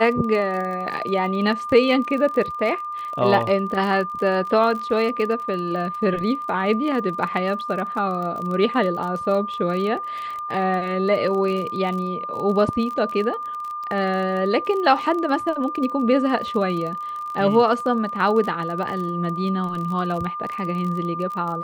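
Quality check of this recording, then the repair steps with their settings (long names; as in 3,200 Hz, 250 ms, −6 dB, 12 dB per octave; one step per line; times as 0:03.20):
surface crackle 31 per second −28 dBFS
whistle 1,200 Hz −27 dBFS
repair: click removal
notch filter 1,200 Hz, Q 30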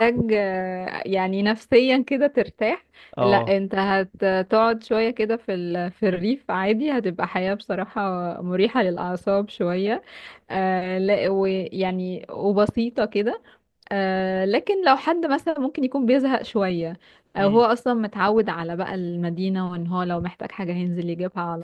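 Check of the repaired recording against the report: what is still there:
none of them is left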